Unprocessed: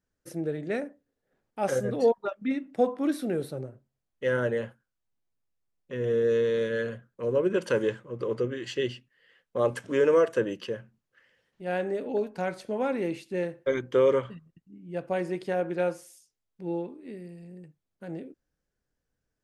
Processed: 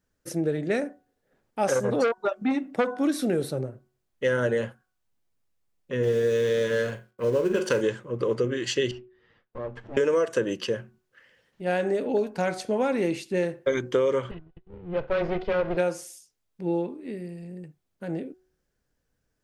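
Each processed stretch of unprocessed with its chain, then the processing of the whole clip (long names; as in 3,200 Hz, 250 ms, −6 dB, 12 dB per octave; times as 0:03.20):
0:01.66–0:02.91: parametric band 630 Hz +4 dB 2.1 octaves + saturating transformer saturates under 1,000 Hz
0:06.03–0:07.81: mu-law and A-law mismatch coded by A + double-tracking delay 19 ms −13 dB + flutter between parallel walls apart 7.2 metres, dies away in 0.24 s
0:08.91–0:09.97: lower of the sound and its delayed copy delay 8.6 ms + head-to-tape spacing loss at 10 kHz 32 dB + downward compressor 2 to 1, threshold −47 dBFS
0:14.31–0:15.77: lower of the sound and its delayed copy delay 2 ms + low-pass filter 3,700 Hz 24 dB per octave + low-shelf EQ 190 Hz +4.5 dB
whole clip: hum removal 370.8 Hz, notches 4; dynamic equaliser 6,400 Hz, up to +7 dB, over −55 dBFS, Q 0.96; downward compressor, threshold −26 dBFS; level +6 dB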